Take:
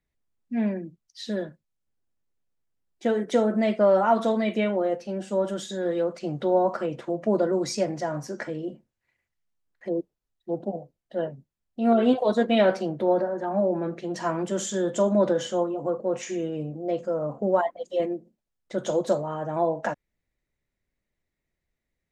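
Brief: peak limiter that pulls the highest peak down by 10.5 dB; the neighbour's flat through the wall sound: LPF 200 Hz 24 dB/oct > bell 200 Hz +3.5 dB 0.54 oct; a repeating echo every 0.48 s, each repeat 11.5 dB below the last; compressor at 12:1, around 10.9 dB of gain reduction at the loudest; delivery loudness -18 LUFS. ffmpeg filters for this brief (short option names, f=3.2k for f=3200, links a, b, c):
-af "acompressor=threshold=-26dB:ratio=12,alimiter=level_in=2.5dB:limit=-24dB:level=0:latency=1,volume=-2.5dB,lowpass=f=200:w=0.5412,lowpass=f=200:w=1.3066,equalizer=f=200:t=o:w=0.54:g=3.5,aecho=1:1:480|960|1440:0.266|0.0718|0.0194,volume=25dB"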